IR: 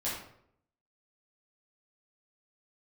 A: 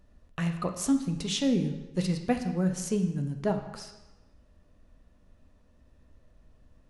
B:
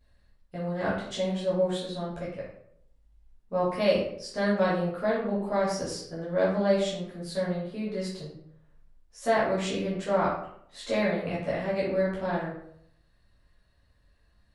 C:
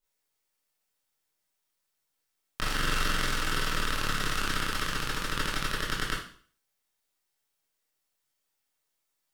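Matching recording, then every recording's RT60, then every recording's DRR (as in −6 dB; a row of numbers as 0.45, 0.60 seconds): B; 1.1, 0.70, 0.45 seconds; 5.5, −9.0, −7.5 decibels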